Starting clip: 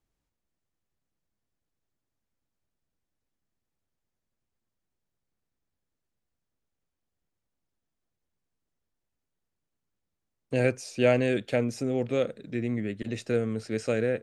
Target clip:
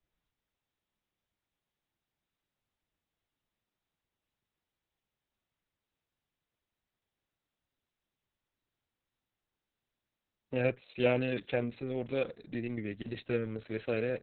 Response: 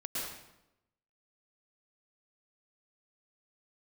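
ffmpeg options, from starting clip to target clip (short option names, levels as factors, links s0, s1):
-af "adynamicequalizer=threshold=0.00501:dfrequency=3000:dqfactor=1.1:tfrequency=3000:tqfactor=1.1:attack=5:release=100:ratio=0.375:range=2.5:mode=boostabove:tftype=bell,volume=0.531" -ar 48000 -c:a libopus -b:a 6k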